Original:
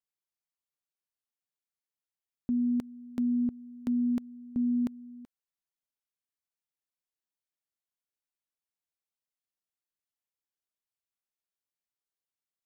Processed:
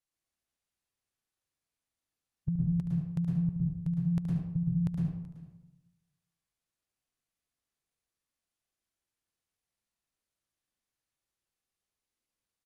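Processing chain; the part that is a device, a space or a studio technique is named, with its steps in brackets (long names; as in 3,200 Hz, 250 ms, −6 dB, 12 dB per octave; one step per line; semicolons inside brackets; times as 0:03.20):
monster voice (pitch shifter −6 semitones; formants moved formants −3.5 semitones; low-shelf EQ 120 Hz +8 dB; single-tap delay 73 ms −9.5 dB; convolution reverb RT60 0.85 s, pre-delay 104 ms, DRR −1 dB)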